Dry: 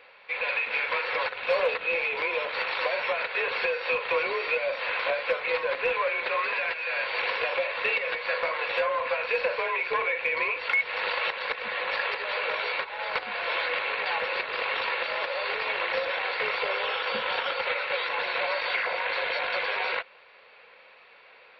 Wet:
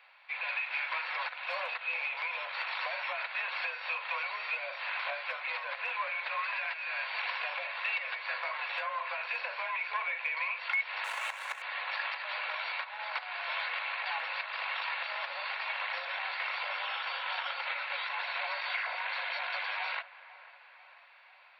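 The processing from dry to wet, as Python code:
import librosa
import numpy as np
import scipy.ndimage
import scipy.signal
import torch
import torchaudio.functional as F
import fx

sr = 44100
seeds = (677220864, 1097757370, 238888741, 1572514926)

y = fx.median_filter(x, sr, points=9, at=(11.04, 11.62))
y = scipy.signal.sosfilt(scipy.signal.butter(8, 650.0, 'highpass', fs=sr, output='sos'), y)
y = fx.echo_wet_lowpass(y, sr, ms=494, feedback_pct=57, hz=2200.0, wet_db=-17.5)
y = F.gain(torch.from_numpy(y), -6.0).numpy()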